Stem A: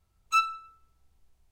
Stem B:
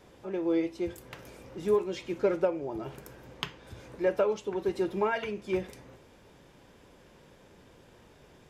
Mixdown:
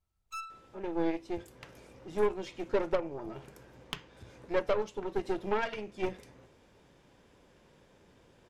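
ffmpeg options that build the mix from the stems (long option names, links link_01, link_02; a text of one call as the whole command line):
ffmpeg -i stem1.wav -i stem2.wav -filter_complex "[0:a]asoftclip=type=tanh:threshold=-24.5dB,volume=-10dB[link_01];[1:a]lowpass=11000,adelay=500,volume=-3.5dB[link_02];[link_01][link_02]amix=inputs=2:normalize=0,aeval=exprs='0.133*(cos(1*acos(clip(val(0)/0.133,-1,1)))-cos(1*PI/2))+0.0188*(cos(6*acos(clip(val(0)/0.133,-1,1)))-cos(6*PI/2))+0.00335*(cos(7*acos(clip(val(0)/0.133,-1,1)))-cos(7*PI/2))':channel_layout=same" out.wav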